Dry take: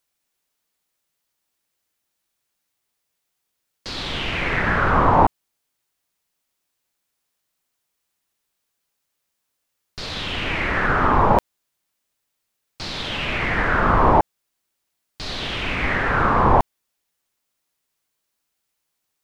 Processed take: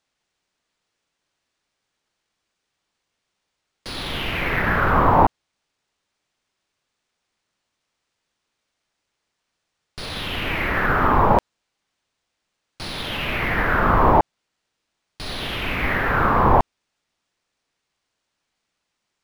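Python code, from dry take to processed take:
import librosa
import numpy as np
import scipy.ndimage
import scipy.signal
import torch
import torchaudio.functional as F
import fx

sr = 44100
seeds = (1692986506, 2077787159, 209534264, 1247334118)

y = np.interp(np.arange(len(x)), np.arange(len(x))[::3], x[::3])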